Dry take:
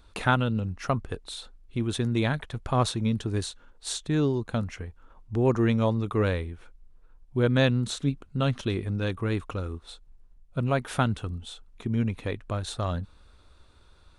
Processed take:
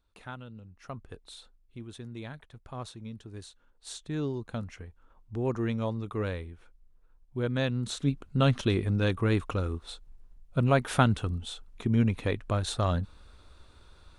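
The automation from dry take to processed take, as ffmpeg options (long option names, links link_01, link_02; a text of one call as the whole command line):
ffmpeg -i in.wav -af "volume=8.5dB,afade=type=in:start_time=0.71:duration=0.61:silence=0.316228,afade=type=out:start_time=1.32:duration=0.55:silence=0.473151,afade=type=in:start_time=3.32:duration=0.99:silence=0.375837,afade=type=in:start_time=7.69:duration=0.69:silence=0.354813" out.wav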